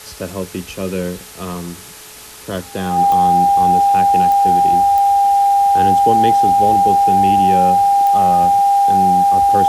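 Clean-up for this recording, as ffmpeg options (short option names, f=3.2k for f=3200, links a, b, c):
-af "adeclick=t=4,bandreject=f=428:t=h:w=4,bandreject=f=856:t=h:w=4,bandreject=f=1.284k:t=h:w=4,bandreject=f=1.712k:t=h:w=4,bandreject=f=800:w=30,afwtdn=0.018"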